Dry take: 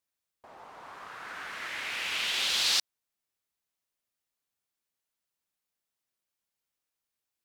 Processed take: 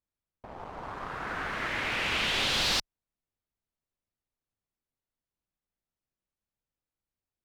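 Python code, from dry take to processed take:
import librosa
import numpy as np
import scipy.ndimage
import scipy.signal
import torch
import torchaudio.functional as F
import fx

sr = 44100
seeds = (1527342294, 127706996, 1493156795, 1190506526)

y = fx.leveller(x, sr, passes=2)
y = fx.tilt_eq(y, sr, slope=-3.5)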